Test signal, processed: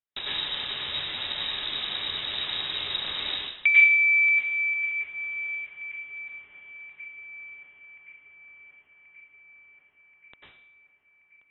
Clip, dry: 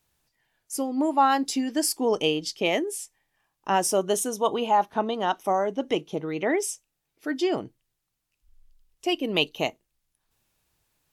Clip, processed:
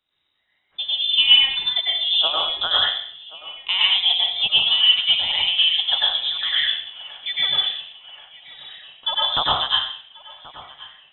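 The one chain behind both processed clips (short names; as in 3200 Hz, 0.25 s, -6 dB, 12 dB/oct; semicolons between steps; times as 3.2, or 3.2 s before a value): transient shaper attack +7 dB, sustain -9 dB; on a send: thinning echo 1.08 s, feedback 70%, high-pass 520 Hz, level -18 dB; on the sum: plate-style reverb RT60 0.63 s, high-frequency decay 0.8×, pre-delay 85 ms, DRR -6.5 dB; inverted band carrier 3800 Hz; gain -4 dB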